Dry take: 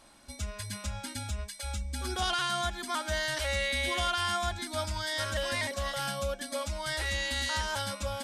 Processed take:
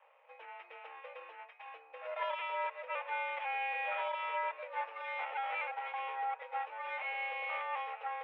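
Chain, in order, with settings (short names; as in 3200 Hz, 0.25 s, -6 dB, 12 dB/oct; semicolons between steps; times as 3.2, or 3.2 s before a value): minimum comb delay 0.36 ms; mistuned SSB +250 Hz 290–2200 Hz; gain -1 dB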